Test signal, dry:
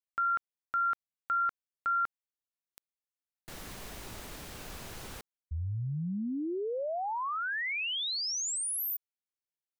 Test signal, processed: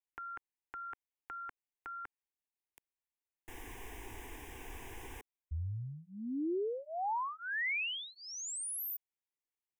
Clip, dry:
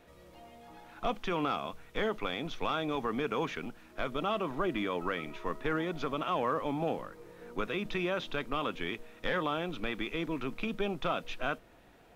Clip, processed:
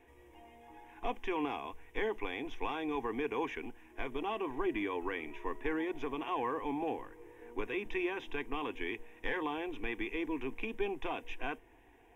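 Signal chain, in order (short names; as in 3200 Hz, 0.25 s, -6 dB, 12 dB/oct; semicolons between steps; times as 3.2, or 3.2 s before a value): high shelf 6500 Hz -6 dB; fixed phaser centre 880 Hz, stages 8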